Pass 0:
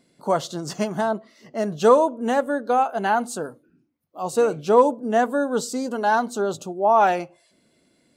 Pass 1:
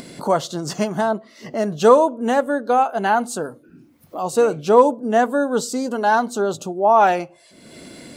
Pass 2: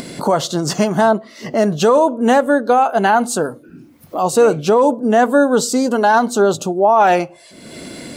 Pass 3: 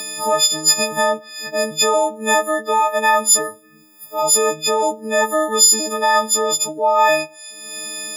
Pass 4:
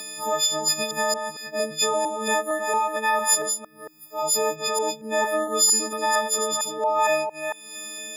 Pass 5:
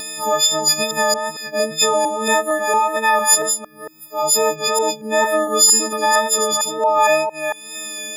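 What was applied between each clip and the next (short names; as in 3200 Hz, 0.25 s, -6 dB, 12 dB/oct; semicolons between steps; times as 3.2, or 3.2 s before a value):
upward compressor, threshold -25 dBFS; gain +3 dB
maximiser +11 dB; gain -3.5 dB
frequency quantiser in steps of 6 st; HPF 700 Hz 6 dB/oct; gain -2.5 dB
reverse delay 0.228 s, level -6 dB; gain -7.5 dB
wow and flutter 22 cents; gain +6.5 dB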